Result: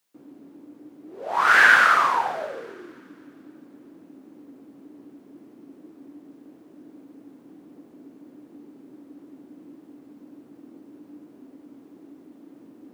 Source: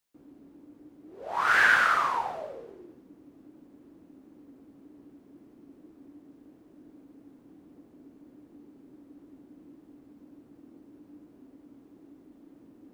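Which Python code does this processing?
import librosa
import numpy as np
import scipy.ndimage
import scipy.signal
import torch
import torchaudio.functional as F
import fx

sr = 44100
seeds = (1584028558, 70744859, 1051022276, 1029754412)

y = scipy.signal.sosfilt(scipy.signal.butter(2, 160.0, 'highpass', fs=sr, output='sos'), x)
y = fx.echo_wet_highpass(y, sr, ms=264, feedback_pct=52, hz=1700.0, wet_db=-18.0)
y = y * librosa.db_to_amplitude(6.5)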